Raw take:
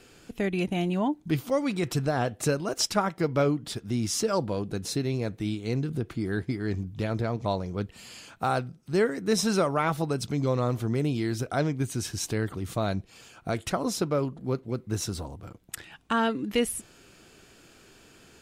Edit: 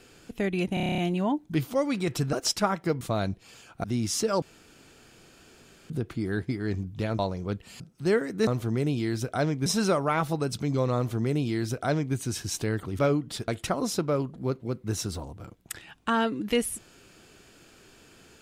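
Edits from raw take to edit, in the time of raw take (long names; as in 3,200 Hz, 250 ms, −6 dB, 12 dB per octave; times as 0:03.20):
0:00.74: stutter 0.03 s, 9 plays
0:02.09–0:02.67: remove
0:03.35–0:03.84: swap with 0:12.68–0:13.51
0:04.42–0:05.90: fill with room tone
0:07.19–0:07.48: remove
0:08.09–0:08.68: remove
0:10.65–0:11.84: duplicate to 0:09.35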